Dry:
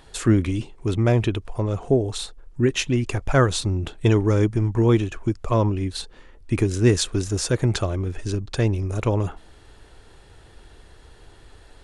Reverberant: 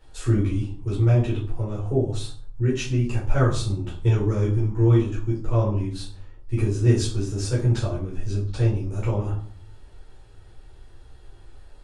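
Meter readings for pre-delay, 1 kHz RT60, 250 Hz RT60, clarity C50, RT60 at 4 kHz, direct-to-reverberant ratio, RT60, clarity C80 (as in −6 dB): 9 ms, 0.50 s, 0.65 s, 6.5 dB, 0.35 s, −8.0 dB, 0.50 s, 11.5 dB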